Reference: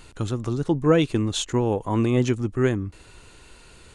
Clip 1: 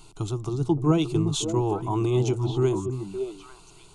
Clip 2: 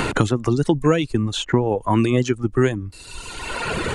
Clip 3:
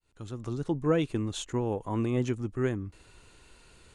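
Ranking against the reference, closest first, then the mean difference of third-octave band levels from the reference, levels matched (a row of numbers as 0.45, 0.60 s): 3, 1, 2; 1.0, 5.0, 7.0 dB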